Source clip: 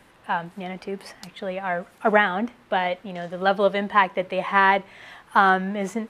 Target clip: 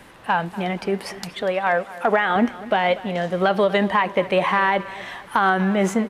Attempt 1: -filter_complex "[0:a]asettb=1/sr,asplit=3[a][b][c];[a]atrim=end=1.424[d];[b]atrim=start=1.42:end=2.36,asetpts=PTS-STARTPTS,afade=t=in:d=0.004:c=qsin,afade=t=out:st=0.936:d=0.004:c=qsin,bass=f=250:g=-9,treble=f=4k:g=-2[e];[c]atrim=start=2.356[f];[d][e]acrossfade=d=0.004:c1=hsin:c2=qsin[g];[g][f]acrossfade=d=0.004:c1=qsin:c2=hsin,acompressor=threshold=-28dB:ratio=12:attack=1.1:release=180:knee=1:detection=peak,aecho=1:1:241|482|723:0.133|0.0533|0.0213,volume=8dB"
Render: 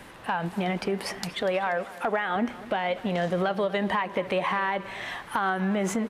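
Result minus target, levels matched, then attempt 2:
compressor: peak gain reduction +8.5 dB
-filter_complex "[0:a]asettb=1/sr,asplit=3[a][b][c];[a]atrim=end=1.424[d];[b]atrim=start=1.42:end=2.36,asetpts=PTS-STARTPTS,afade=t=in:d=0.004:c=qsin,afade=t=out:st=0.936:d=0.004:c=qsin,bass=f=250:g=-9,treble=f=4k:g=-2[e];[c]atrim=start=2.356[f];[d][e]acrossfade=d=0.004:c1=hsin:c2=qsin[g];[g][f]acrossfade=d=0.004:c1=qsin:c2=hsin,acompressor=threshold=-19dB:ratio=12:attack=1.1:release=180:knee=1:detection=peak,aecho=1:1:241|482|723:0.133|0.0533|0.0213,volume=8dB"

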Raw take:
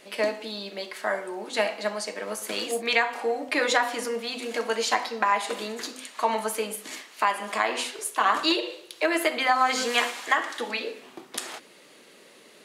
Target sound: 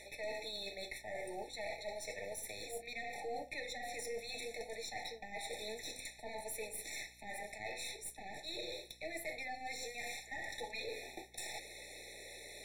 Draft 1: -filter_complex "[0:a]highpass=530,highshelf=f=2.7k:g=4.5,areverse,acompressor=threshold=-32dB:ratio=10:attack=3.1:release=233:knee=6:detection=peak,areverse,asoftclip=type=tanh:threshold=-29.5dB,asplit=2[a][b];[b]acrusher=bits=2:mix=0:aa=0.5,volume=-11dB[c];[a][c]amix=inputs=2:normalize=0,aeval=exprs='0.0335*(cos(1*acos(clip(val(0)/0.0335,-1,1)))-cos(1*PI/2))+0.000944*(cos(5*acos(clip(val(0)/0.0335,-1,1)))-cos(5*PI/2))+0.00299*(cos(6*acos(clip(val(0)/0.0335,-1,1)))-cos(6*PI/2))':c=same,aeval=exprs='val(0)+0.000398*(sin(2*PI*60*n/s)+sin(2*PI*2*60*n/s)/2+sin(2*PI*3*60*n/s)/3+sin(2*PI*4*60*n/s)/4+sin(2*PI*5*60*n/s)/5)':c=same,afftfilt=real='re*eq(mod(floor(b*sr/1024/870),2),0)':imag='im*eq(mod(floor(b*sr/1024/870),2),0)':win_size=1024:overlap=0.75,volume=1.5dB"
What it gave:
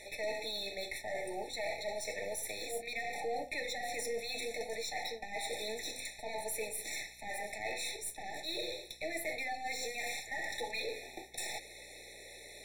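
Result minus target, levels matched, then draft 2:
compressor: peak gain reduction -6.5 dB
-filter_complex "[0:a]highpass=530,highshelf=f=2.7k:g=4.5,areverse,acompressor=threshold=-39.5dB:ratio=10:attack=3.1:release=233:knee=6:detection=peak,areverse,asoftclip=type=tanh:threshold=-29.5dB,asplit=2[a][b];[b]acrusher=bits=2:mix=0:aa=0.5,volume=-11dB[c];[a][c]amix=inputs=2:normalize=0,aeval=exprs='0.0335*(cos(1*acos(clip(val(0)/0.0335,-1,1)))-cos(1*PI/2))+0.000944*(cos(5*acos(clip(val(0)/0.0335,-1,1)))-cos(5*PI/2))+0.00299*(cos(6*acos(clip(val(0)/0.0335,-1,1)))-cos(6*PI/2))':c=same,aeval=exprs='val(0)+0.000398*(sin(2*PI*60*n/s)+sin(2*PI*2*60*n/s)/2+sin(2*PI*3*60*n/s)/3+sin(2*PI*4*60*n/s)/4+sin(2*PI*5*60*n/s)/5)':c=same,afftfilt=real='re*eq(mod(floor(b*sr/1024/870),2),0)':imag='im*eq(mod(floor(b*sr/1024/870),2),0)':win_size=1024:overlap=0.75,volume=1.5dB"

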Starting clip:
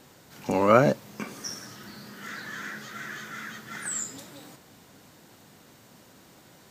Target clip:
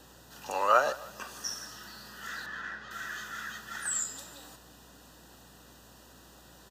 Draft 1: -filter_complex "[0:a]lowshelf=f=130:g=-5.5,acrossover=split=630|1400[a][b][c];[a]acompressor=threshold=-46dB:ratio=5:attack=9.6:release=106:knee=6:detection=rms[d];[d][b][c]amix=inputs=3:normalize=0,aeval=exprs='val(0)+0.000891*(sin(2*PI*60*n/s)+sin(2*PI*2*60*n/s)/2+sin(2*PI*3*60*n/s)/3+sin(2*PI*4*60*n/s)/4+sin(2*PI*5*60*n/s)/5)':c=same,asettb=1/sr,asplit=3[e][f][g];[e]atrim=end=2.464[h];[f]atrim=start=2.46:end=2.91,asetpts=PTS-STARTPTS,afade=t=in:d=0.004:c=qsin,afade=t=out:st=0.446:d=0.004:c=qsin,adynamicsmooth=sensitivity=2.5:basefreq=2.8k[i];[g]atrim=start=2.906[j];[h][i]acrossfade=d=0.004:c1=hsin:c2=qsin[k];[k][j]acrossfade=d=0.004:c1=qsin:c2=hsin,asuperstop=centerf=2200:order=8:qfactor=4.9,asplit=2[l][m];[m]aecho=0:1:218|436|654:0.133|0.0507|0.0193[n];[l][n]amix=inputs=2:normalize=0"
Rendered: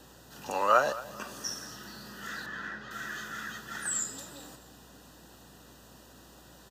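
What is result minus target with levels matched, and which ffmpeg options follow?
echo 66 ms late; compressor: peak gain reduction -8.5 dB
-filter_complex "[0:a]lowshelf=f=130:g=-5.5,acrossover=split=630|1400[a][b][c];[a]acompressor=threshold=-56.5dB:ratio=5:attack=9.6:release=106:knee=6:detection=rms[d];[d][b][c]amix=inputs=3:normalize=0,aeval=exprs='val(0)+0.000891*(sin(2*PI*60*n/s)+sin(2*PI*2*60*n/s)/2+sin(2*PI*3*60*n/s)/3+sin(2*PI*4*60*n/s)/4+sin(2*PI*5*60*n/s)/5)':c=same,asettb=1/sr,asplit=3[e][f][g];[e]atrim=end=2.464[h];[f]atrim=start=2.46:end=2.91,asetpts=PTS-STARTPTS,afade=t=in:d=0.004:c=qsin,afade=t=out:st=0.446:d=0.004:c=qsin,adynamicsmooth=sensitivity=2.5:basefreq=2.8k[i];[g]atrim=start=2.906[j];[h][i]acrossfade=d=0.004:c1=hsin:c2=qsin[k];[k][j]acrossfade=d=0.004:c1=qsin:c2=hsin,asuperstop=centerf=2200:order=8:qfactor=4.9,asplit=2[l][m];[m]aecho=0:1:152|304|456:0.133|0.0507|0.0193[n];[l][n]amix=inputs=2:normalize=0"

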